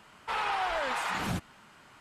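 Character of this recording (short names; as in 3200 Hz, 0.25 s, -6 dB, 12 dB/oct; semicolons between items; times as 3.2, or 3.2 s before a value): noise floor -57 dBFS; spectral tilt -4.0 dB/oct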